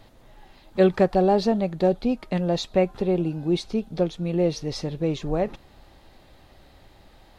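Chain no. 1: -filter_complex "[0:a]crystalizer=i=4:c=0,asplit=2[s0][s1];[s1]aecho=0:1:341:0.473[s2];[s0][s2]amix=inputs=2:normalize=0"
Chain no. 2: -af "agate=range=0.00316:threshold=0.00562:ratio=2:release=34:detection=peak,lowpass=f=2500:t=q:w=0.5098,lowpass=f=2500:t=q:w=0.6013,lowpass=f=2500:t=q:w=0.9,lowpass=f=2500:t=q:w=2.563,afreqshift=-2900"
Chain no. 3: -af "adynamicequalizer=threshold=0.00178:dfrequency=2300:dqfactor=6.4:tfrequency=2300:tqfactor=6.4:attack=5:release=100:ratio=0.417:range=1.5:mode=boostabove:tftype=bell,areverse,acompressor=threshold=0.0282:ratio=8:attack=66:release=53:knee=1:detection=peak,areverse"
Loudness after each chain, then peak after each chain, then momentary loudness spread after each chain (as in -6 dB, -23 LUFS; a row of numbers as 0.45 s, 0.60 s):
-22.5 LUFS, -20.5 LUFS, -30.0 LUFS; -6.0 dBFS, -5.5 dBFS, -13.0 dBFS; 7 LU, 8 LU, 4 LU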